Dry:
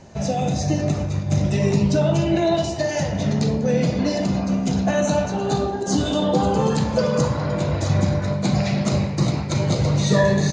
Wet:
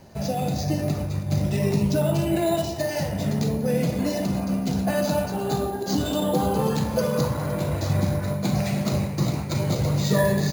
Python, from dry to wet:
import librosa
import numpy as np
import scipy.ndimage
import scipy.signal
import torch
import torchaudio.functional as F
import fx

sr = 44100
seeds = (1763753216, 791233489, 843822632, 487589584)

y = np.repeat(x[::4], 4)[:len(x)]
y = y * 10.0 ** (-3.5 / 20.0)